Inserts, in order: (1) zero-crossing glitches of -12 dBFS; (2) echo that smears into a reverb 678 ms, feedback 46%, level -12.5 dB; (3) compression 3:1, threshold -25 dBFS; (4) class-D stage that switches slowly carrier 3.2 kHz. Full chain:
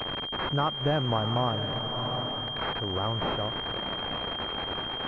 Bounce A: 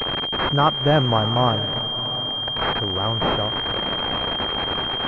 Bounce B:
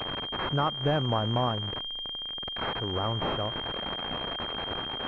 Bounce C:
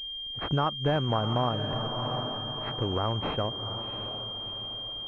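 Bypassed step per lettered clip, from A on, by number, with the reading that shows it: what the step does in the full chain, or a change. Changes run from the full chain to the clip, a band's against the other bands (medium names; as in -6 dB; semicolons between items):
3, mean gain reduction 6.0 dB; 2, momentary loudness spread change +2 LU; 1, 2 kHz band -5.0 dB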